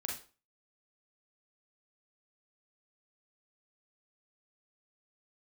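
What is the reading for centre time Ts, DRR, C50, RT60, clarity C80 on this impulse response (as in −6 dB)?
32 ms, −1.0 dB, 4.5 dB, 0.35 s, 11.5 dB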